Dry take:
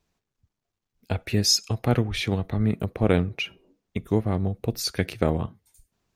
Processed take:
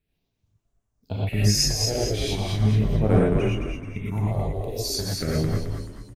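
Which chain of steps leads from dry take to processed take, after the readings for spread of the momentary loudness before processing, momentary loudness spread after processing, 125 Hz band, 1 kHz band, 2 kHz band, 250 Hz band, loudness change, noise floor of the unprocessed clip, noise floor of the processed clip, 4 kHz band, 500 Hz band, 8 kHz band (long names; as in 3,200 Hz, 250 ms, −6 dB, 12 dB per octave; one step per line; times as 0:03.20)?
11 LU, 11 LU, +3.5 dB, −0.5 dB, −2.5 dB, 0.0 dB, +1.5 dB, −84 dBFS, −77 dBFS, +0.5 dB, +1.0 dB, +2.5 dB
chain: all-pass phaser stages 4, 0.38 Hz, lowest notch 190–4,300 Hz
on a send: echo with shifted repeats 216 ms, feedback 46%, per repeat −64 Hz, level −4.5 dB
on the sum: reverb whose tail is shaped and stops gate 140 ms rising, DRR −5.5 dB
level −5 dB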